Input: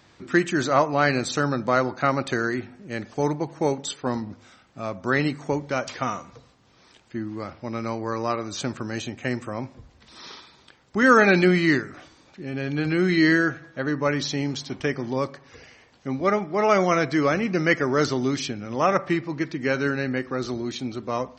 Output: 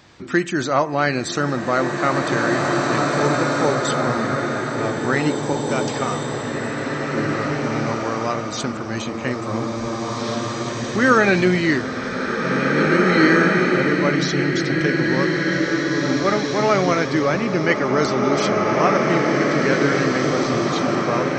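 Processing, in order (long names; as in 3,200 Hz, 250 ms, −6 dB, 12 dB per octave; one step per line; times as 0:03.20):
in parallel at −0.5 dB: downward compressor, threshold −34 dBFS, peak gain reduction 21 dB
on the sum: slow-attack reverb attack 2,250 ms, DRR −1.5 dB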